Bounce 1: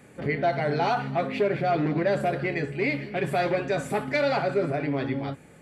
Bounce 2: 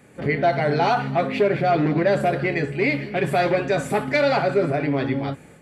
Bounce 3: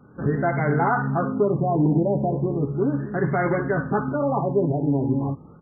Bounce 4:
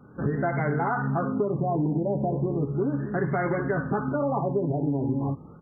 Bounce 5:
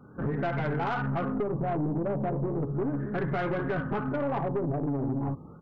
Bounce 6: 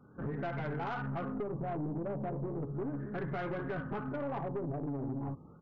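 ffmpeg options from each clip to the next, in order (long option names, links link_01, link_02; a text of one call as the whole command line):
ffmpeg -i in.wav -af "dynaudnorm=framelen=120:gausssize=3:maxgain=5dB" out.wav
ffmpeg -i in.wav -af "aecho=1:1:0.8:0.51,afftfilt=real='re*lt(b*sr/1024,970*pow(2200/970,0.5+0.5*sin(2*PI*0.36*pts/sr)))':imag='im*lt(b*sr/1024,970*pow(2200/970,0.5+0.5*sin(2*PI*0.36*pts/sr)))':win_size=1024:overlap=0.75" out.wav
ffmpeg -i in.wav -af "acompressor=threshold=-22dB:ratio=6" out.wav
ffmpeg -i in.wav -af "aeval=exprs='(tanh(15.8*val(0)+0.3)-tanh(0.3))/15.8':channel_layout=same" out.wav
ffmpeg -i in.wav -af "aresample=16000,aresample=44100,volume=-7.5dB" out.wav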